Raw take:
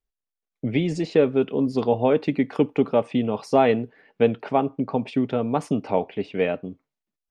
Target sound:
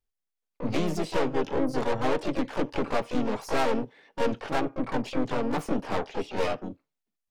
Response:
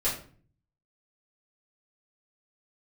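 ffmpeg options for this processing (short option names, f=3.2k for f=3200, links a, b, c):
-filter_complex "[0:a]aeval=exprs='(tanh(17.8*val(0)+0.65)-tanh(0.65))/17.8':c=same,asplit=3[a][b][c];[b]asetrate=52444,aresample=44100,atempo=0.840896,volume=-4dB[d];[c]asetrate=88200,aresample=44100,atempo=0.5,volume=-7dB[e];[a][d][e]amix=inputs=3:normalize=0"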